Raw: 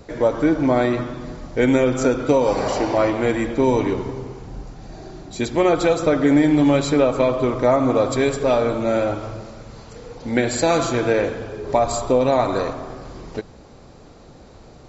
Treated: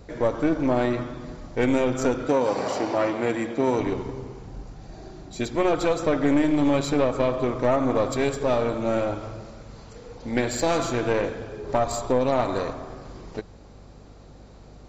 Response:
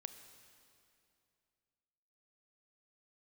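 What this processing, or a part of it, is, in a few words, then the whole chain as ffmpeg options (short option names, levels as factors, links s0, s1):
valve amplifier with mains hum: -filter_complex "[0:a]aeval=exprs='(tanh(3.55*val(0)+0.6)-tanh(0.6))/3.55':c=same,aeval=exprs='val(0)+0.00501*(sin(2*PI*50*n/s)+sin(2*PI*2*50*n/s)/2+sin(2*PI*3*50*n/s)/3+sin(2*PI*4*50*n/s)/4+sin(2*PI*5*50*n/s)/5)':c=same,asettb=1/sr,asplit=3[s0][s1][s2];[s0]atrim=end=2.284[s3];[s1]atrim=start=2.28:end=3.8,asetpts=PTS-STARTPTS,afade=t=in:d=0.004:c=qsin,afade=t=out:st=1.516:d=0.004:c=qsin,highpass=140[s4];[s2]atrim=start=3.796[s5];[s3][s4]acrossfade=d=0.004:c1=hsin:c2=qsin[s6];[s6][s5]acrossfade=d=0.004:c1=qsin:c2=hsin,volume=0.794"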